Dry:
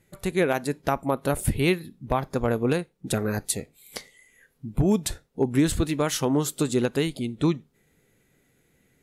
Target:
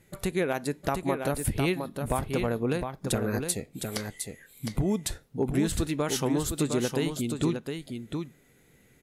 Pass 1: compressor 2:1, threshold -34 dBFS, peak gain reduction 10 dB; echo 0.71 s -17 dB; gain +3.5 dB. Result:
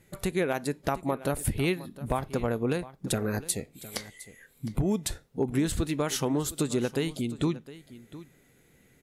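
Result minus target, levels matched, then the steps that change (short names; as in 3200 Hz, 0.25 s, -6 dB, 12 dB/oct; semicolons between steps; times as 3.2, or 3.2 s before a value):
echo-to-direct -11 dB
change: echo 0.71 s -6 dB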